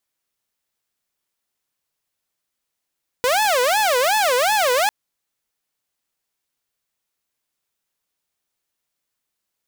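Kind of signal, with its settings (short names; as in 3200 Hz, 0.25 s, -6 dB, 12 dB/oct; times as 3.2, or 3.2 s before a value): siren wail 489–869 Hz 2.7/s saw -13 dBFS 1.65 s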